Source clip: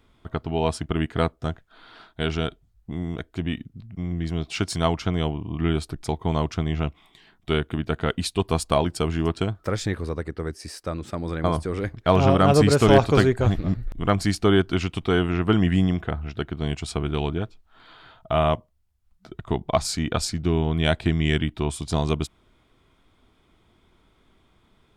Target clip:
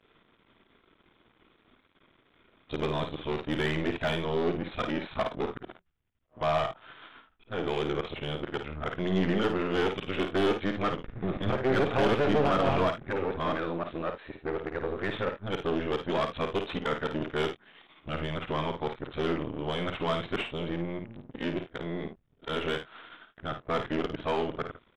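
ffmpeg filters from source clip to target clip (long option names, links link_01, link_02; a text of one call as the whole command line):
ffmpeg -i in.wav -filter_complex "[0:a]areverse,equalizer=frequency=790:width_type=o:width=1.1:gain=-9.5,aresample=8000,aeval=exprs='max(val(0),0)':channel_layout=same,aresample=44100,asplit=2[link_01][link_02];[link_02]highpass=frequency=720:poles=1,volume=25dB,asoftclip=type=tanh:threshold=-7dB[link_03];[link_01][link_03]amix=inputs=2:normalize=0,lowpass=frequency=1300:poles=1,volume=-6dB,aecho=1:1:53|76:0.422|0.141,volume=-7.5dB" out.wav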